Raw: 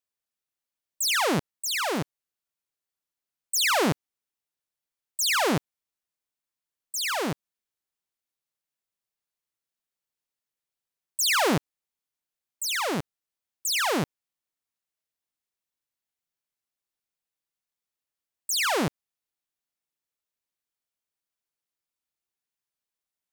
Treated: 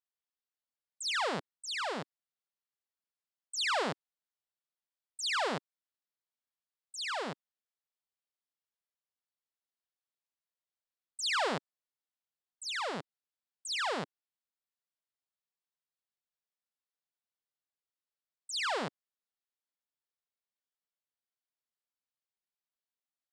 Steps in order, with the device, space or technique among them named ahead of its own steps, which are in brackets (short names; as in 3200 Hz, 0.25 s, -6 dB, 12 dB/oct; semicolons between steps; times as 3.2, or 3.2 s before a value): full-range speaker at full volume (Doppler distortion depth 0.76 ms; speaker cabinet 200–7300 Hz, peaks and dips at 320 Hz -10 dB, 2400 Hz -4 dB, 6200 Hz -9 dB); gain -6.5 dB